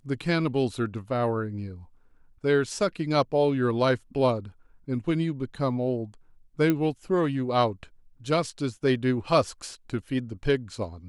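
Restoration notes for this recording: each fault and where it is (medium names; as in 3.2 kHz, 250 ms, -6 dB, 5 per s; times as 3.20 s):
6.70 s: pop -12 dBFS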